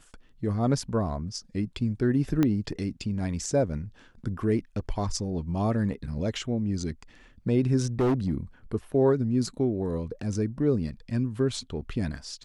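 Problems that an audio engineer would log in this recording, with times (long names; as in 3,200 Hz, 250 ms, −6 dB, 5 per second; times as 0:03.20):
0:02.43: click −12 dBFS
0:07.99–0:08.33: clipping −20.5 dBFS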